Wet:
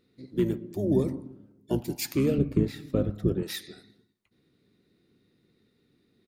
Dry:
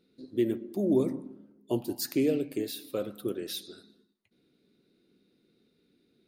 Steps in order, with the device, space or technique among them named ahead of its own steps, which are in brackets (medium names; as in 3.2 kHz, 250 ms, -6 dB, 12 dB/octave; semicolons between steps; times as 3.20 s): octave pedal (harmony voices -12 st -5 dB); 2.38–3.43 s: RIAA curve playback